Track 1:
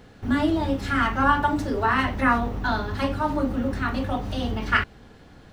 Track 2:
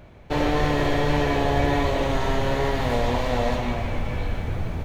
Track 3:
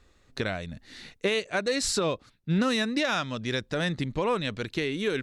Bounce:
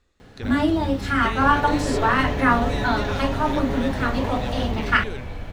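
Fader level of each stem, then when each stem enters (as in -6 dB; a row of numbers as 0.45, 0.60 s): +2.0, -6.5, -7.0 dB; 0.20, 1.10, 0.00 s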